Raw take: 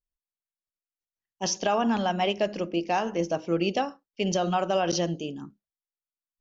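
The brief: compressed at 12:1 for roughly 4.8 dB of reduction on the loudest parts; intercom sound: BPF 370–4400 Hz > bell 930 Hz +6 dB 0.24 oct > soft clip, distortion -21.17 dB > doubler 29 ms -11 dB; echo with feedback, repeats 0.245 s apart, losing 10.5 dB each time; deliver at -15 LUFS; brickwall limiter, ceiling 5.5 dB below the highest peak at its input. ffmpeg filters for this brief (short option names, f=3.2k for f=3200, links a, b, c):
-filter_complex "[0:a]acompressor=threshold=-25dB:ratio=12,alimiter=limit=-21dB:level=0:latency=1,highpass=370,lowpass=4.4k,equalizer=f=930:t=o:w=0.24:g=6,aecho=1:1:245|490|735:0.299|0.0896|0.0269,asoftclip=threshold=-22.5dB,asplit=2[a][b];[b]adelay=29,volume=-11dB[c];[a][c]amix=inputs=2:normalize=0,volume=19.5dB"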